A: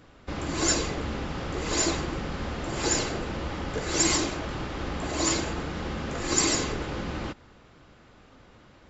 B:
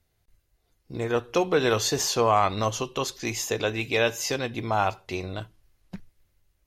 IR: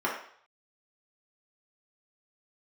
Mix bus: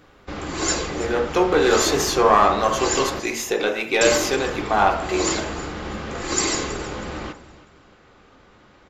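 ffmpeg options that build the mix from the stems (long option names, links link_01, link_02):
-filter_complex "[0:a]volume=1dB,asplit=3[link_01][link_02][link_03];[link_01]atrim=end=3.2,asetpts=PTS-STARTPTS,afade=type=out:start_time=3.196:duration=0.004:curve=hsin[link_04];[link_02]atrim=start=3.2:end=4.01,asetpts=PTS-STARTPTS,volume=0[link_05];[link_03]atrim=start=4.01,asetpts=PTS-STARTPTS,afade=type=in:duration=0.004:curve=hsin[link_06];[link_04][link_05][link_06]concat=n=3:v=0:a=1,asplit=3[link_07][link_08][link_09];[link_08]volume=-16dB[link_10];[link_09]volume=-16dB[link_11];[1:a]aeval=exprs='(tanh(4.47*val(0)+0.45)-tanh(0.45))/4.47':channel_layout=same,dynaudnorm=framelen=280:gausssize=9:maxgain=4dB,volume=-2.5dB,asplit=3[link_12][link_13][link_14];[link_13]volume=-6dB[link_15];[link_14]volume=-24dB[link_16];[2:a]atrim=start_sample=2205[link_17];[link_10][link_15]amix=inputs=2:normalize=0[link_18];[link_18][link_17]afir=irnorm=-1:irlink=0[link_19];[link_11][link_16]amix=inputs=2:normalize=0,aecho=0:1:322|644|966|1288:1|0.3|0.09|0.027[link_20];[link_07][link_12][link_19][link_20]amix=inputs=4:normalize=0"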